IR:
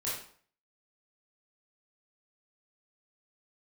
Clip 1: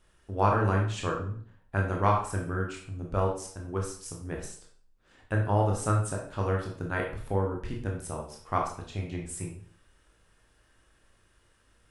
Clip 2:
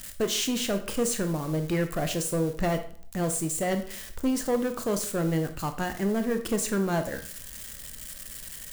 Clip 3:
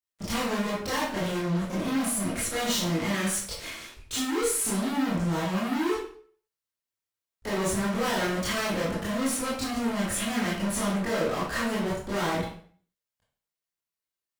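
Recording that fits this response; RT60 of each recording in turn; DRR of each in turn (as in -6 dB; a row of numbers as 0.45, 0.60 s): 3; 0.50, 0.50, 0.50 s; -0.5, 7.0, -8.5 dB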